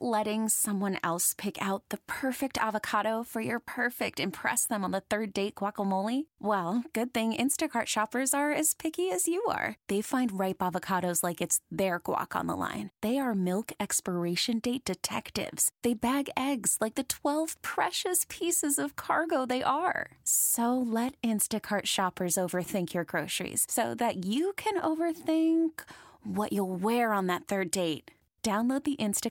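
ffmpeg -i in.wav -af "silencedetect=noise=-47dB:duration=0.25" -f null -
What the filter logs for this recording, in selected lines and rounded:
silence_start: 28.09
silence_end: 28.44 | silence_duration: 0.35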